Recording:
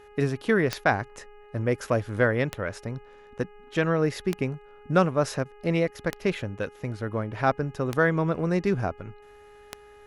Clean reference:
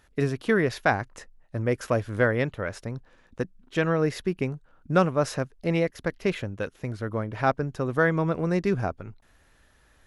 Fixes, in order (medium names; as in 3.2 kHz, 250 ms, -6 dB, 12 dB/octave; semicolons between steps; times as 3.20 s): de-click; de-hum 414.8 Hz, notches 7; interpolate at 0.84/5.44 s, 12 ms